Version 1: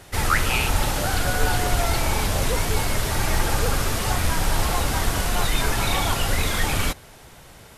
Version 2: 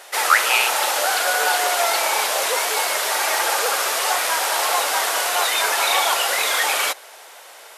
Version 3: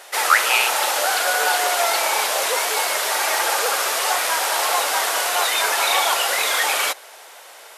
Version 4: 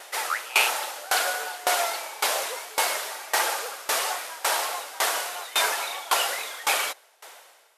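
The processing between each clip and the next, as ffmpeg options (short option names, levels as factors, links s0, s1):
-af "highpass=f=520:w=0.5412,highpass=f=520:w=1.3066,volume=2.11"
-af anull
-af "aeval=exprs='val(0)*pow(10,-22*if(lt(mod(1.8*n/s,1),2*abs(1.8)/1000),1-mod(1.8*n/s,1)/(2*abs(1.8)/1000),(mod(1.8*n/s,1)-2*abs(1.8)/1000)/(1-2*abs(1.8)/1000))/20)':c=same"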